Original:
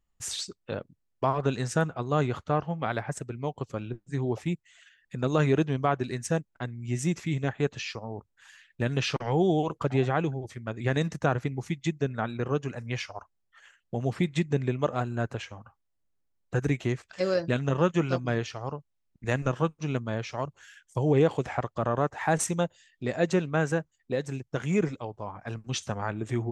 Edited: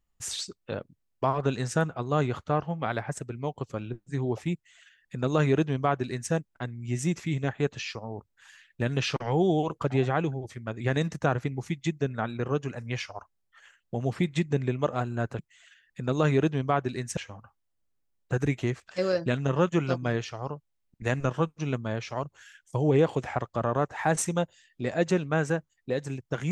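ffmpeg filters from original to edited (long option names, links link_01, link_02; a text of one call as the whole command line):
ffmpeg -i in.wav -filter_complex "[0:a]asplit=3[link_01][link_02][link_03];[link_01]atrim=end=15.392[link_04];[link_02]atrim=start=4.538:end=6.322[link_05];[link_03]atrim=start=15.388[link_06];[link_04][link_05]acrossfade=duration=0.004:curve1=hsin:curve2=hsin[link_07];[link_07][link_06]acrossfade=duration=0.004:curve1=hsin:curve2=hsin" out.wav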